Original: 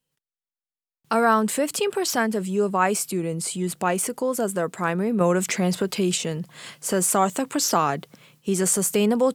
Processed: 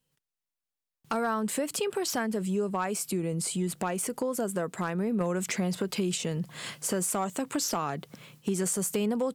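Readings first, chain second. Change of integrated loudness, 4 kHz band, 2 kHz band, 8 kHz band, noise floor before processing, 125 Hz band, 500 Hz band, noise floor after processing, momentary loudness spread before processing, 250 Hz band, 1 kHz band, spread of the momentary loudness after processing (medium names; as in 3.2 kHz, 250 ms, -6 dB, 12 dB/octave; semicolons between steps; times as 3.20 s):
-7.5 dB, -6.5 dB, -8.5 dB, -7.0 dB, under -85 dBFS, -5.0 dB, -8.0 dB, under -85 dBFS, 7 LU, -6.0 dB, -10.0 dB, 5 LU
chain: compression 3:1, threshold -31 dBFS, peak gain reduction 12.5 dB; bass shelf 170 Hz +5 dB; hard clipper -21 dBFS, distortion -27 dB; trim +1 dB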